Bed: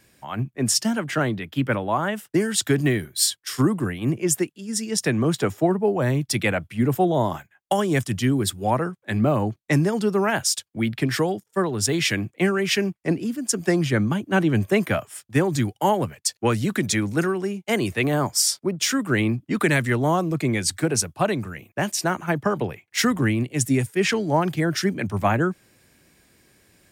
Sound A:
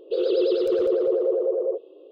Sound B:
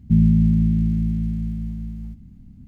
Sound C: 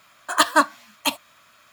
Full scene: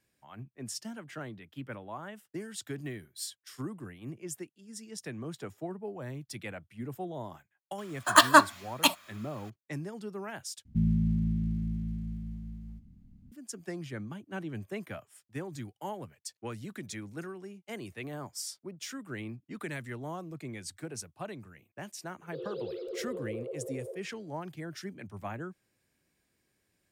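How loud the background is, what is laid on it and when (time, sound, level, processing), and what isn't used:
bed −18.5 dB
0:07.78: mix in C −1 dB
0:10.65: overwrite with B −11.5 dB
0:22.21: mix in A −17 dB

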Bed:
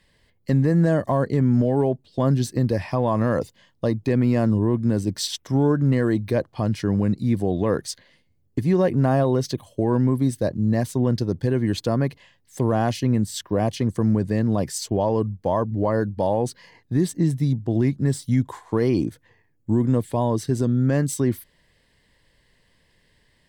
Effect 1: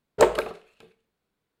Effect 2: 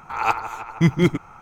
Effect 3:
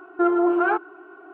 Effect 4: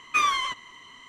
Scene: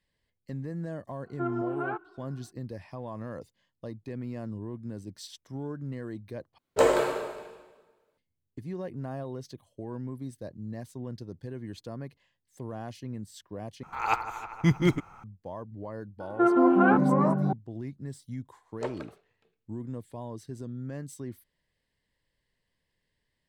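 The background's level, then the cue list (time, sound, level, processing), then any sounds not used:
bed −17.5 dB
0:01.20: mix in 3 −12.5 dB, fades 0.10 s
0:06.58: overwrite with 1 −7 dB + dense smooth reverb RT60 1.3 s, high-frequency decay 0.9×, DRR −4 dB
0:13.83: overwrite with 2 −6 dB
0:16.20: mix in 3 −2.5 dB + delay with pitch and tempo change per echo 107 ms, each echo −5 semitones, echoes 3
0:18.62: mix in 1 −17.5 dB + low-pass filter 6,800 Hz
not used: 4

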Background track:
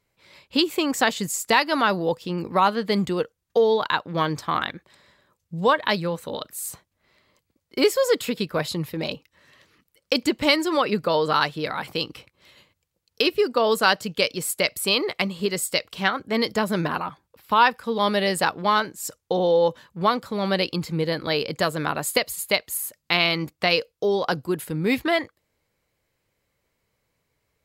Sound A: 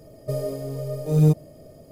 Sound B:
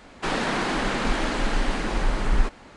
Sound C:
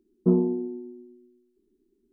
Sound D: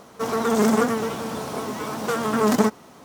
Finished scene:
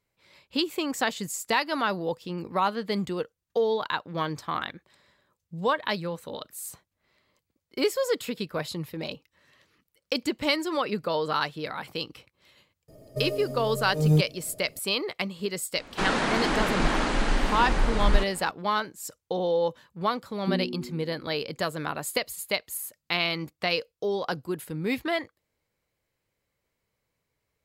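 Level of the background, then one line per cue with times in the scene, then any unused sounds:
background track −6 dB
0:12.88: mix in A −4 dB
0:15.75: mix in B −0.5 dB
0:20.21: mix in C −7.5 dB + flat-topped bell 740 Hz −13 dB
not used: D

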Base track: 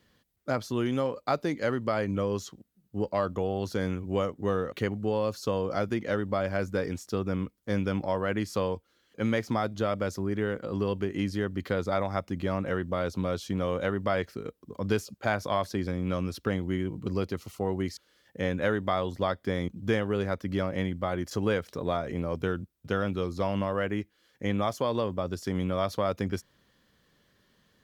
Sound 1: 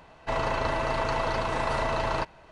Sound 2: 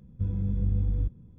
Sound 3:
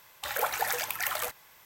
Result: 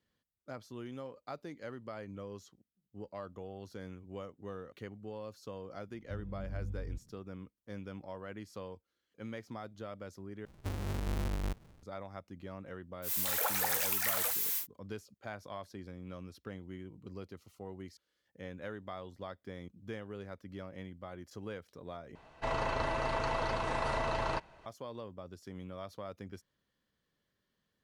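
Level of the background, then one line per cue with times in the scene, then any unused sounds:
base track −16 dB
0:05.90: mix in 2 −14 dB
0:10.45: overwrite with 2 −12.5 dB + each half-wave held at its own peak
0:13.02: mix in 3 −6 dB, fades 0.10 s + spike at every zero crossing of −23 dBFS
0:22.15: overwrite with 1 −6 dB

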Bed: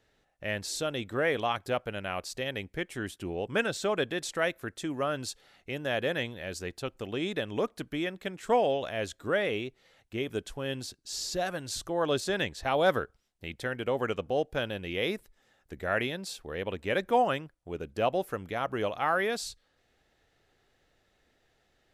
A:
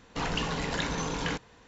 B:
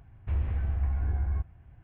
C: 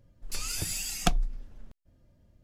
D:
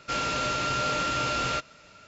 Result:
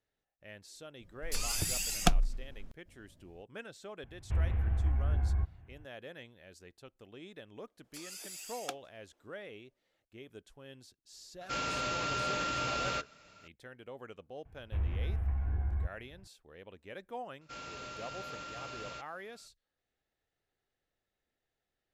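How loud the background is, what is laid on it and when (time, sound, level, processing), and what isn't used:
bed −17.5 dB
0:01.00: mix in C −0.5 dB
0:04.03: mix in B −1.5 dB
0:07.62: mix in C −12 dB + Butterworth high-pass 300 Hz
0:11.41: mix in D −6.5 dB
0:14.45: mix in B −4.5 dB
0:17.41: mix in D −17 dB
not used: A

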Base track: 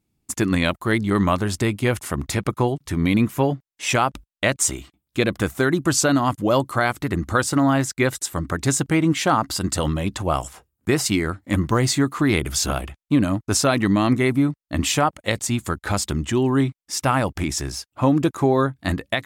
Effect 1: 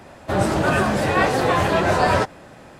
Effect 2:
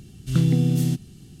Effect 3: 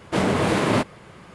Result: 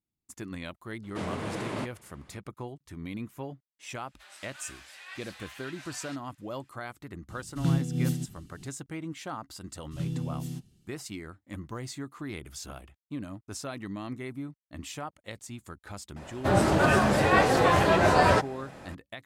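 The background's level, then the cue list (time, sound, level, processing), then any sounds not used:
base track −19 dB
0:01.03: mix in 3 −14 dB
0:03.91: mix in 1 −17 dB + Chebyshev high-pass filter 2,600 Hz
0:07.29: mix in 2 −3.5 dB + amplitude modulation by smooth noise
0:09.64: mix in 2 −14 dB + multiband upward and downward expander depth 40%
0:16.16: mix in 1 −3 dB

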